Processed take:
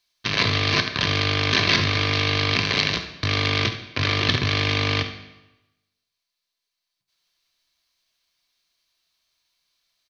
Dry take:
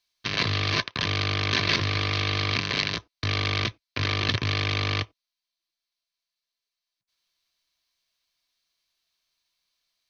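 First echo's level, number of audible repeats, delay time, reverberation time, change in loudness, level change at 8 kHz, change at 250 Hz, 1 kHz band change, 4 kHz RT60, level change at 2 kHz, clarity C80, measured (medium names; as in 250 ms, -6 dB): -12.5 dB, 1, 71 ms, 1.0 s, +4.5 dB, no reading, +5.5 dB, +4.5 dB, 0.85 s, +5.0 dB, 11.0 dB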